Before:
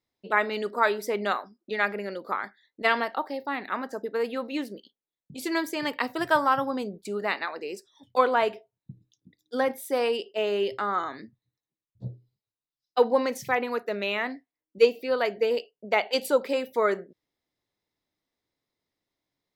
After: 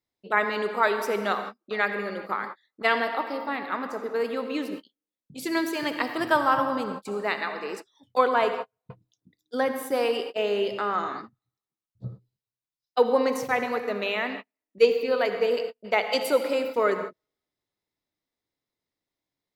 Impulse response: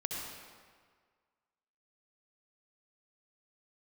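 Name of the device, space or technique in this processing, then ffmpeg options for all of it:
keyed gated reverb: -filter_complex "[0:a]asplit=3[link_01][link_02][link_03];[1:a]atrim=start_sample=2205[link_04];[link_02][link_04]afir=irnorm=-1:irlink=0[link_05];[link_03]apad=whole_len=862571[link_06];[link_05][link_06]sidechaingate=range=-50dB:threshold=-40dB:ratio=16:detection=peak,volume=-4dB[link_07];[link_01][link_07]amix=inputs=2:normalize=0,volume=-3.5dB"

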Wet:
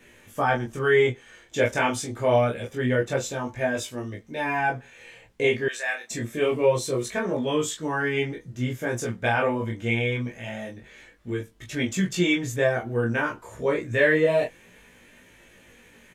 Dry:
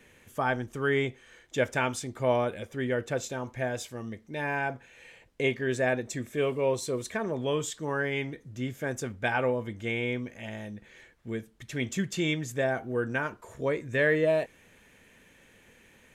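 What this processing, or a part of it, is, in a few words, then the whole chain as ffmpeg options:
double-tracked vocal: -filter_complex "[0:a]asplit=2[link_01][link_02];[link_02]adelay=17,volume=-2dB[link_03];[link_01][link_03]amix=inputs=2:normalize=0,flanger=delay=20:depth=7.4:speed=0.26,asettb=1/sr,asplit=3[link_04][link_05][link_06];[link_04]atrim=end=5.684[link_07];[link_05]atrim=start=5.68:end=6.11,asetpts=PTS-STARTPTS,afade=type=in:duration=0.004:curve=qsin,afade=type=out:start_time=0.426:duration=0.004:curve=qsin,highpass=1400[link_08];[link_06]atrim=start=6.106[link_09];[link_07][link_08]acrossfade=duration=0.004:curve1=hsin:curve2=qsin[link_10];[link_10][link_09]acrossfade=duration=0.004:curve1=qsin:curve2=hsin,volume=6dB"

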